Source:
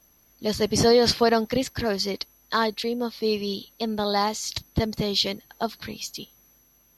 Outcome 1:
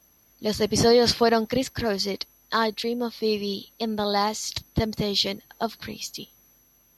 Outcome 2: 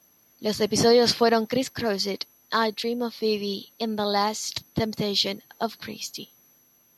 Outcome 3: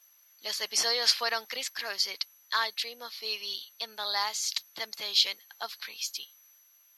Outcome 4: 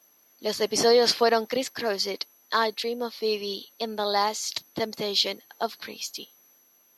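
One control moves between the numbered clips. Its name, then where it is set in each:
HPF, cutoff: 40, 130, 1400, 350 Hz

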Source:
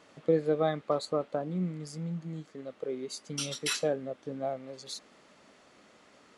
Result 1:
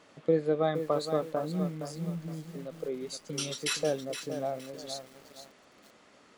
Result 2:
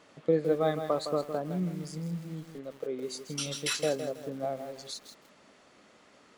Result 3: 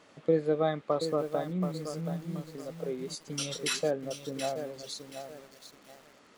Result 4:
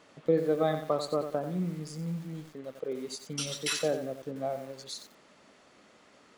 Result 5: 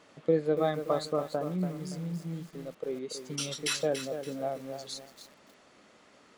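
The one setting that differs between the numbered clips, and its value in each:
lo-fi delay, time: 467, 162, 728, 90, 285 ms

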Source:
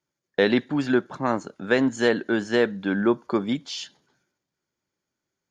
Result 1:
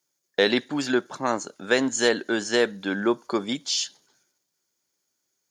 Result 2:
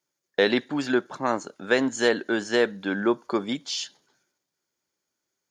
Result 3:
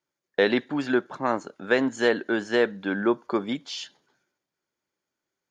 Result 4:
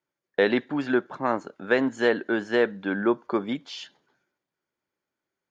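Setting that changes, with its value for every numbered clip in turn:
tone controls, treble: +14, +6, -3, -11 dB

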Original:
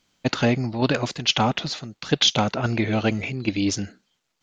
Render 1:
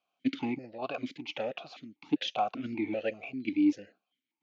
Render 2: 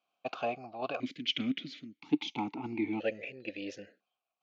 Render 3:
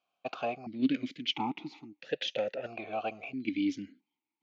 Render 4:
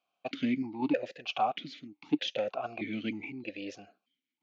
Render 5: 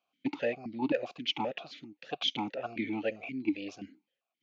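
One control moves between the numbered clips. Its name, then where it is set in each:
vowel sequencer, rate: 5.1, 1, 1.5, 3.2, 7.6 Hz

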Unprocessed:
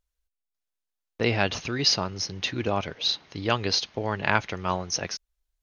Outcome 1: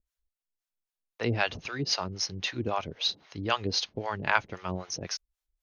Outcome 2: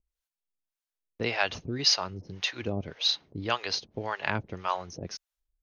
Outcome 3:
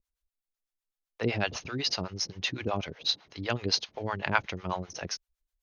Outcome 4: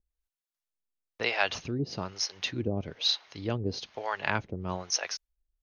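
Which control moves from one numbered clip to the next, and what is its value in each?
harmonic tremolo, rate: 3.8, 1.8, 7.9, 1.1 Hz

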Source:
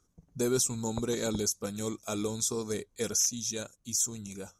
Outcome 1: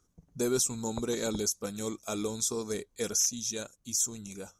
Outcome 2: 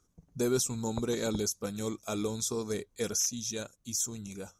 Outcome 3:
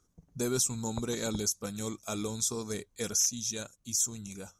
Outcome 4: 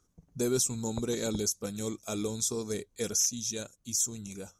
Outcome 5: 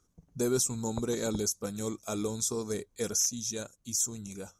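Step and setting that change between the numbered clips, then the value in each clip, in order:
dynamic EQ, frequency: 110, 8100, 410, 1100, 2900 Hz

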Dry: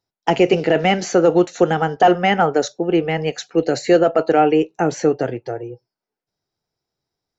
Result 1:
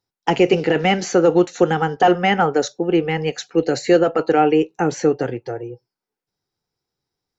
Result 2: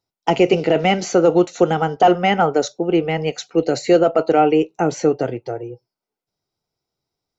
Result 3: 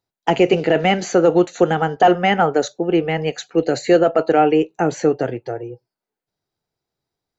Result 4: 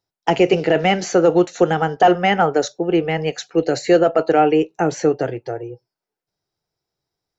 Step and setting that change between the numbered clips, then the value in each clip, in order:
notch, frequency: 640, 1700, 5400, 240 Hz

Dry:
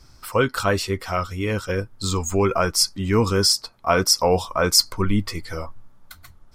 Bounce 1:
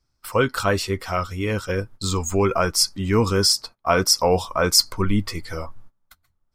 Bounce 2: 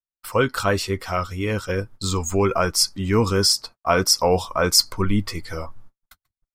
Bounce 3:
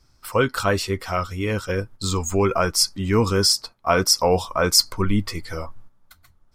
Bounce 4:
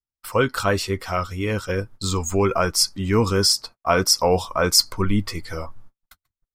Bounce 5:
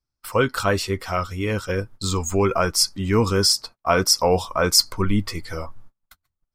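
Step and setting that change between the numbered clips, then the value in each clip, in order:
gate, range: -22, -60, -9, -48, -34 dB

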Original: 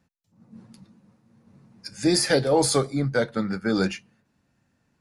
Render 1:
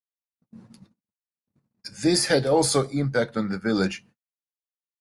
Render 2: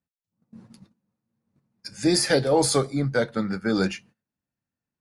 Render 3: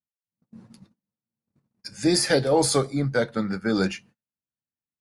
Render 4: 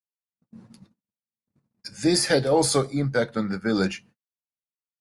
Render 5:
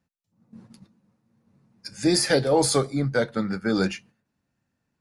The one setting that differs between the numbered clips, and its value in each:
gate, range: -60, -20, -33, -47, -8 dB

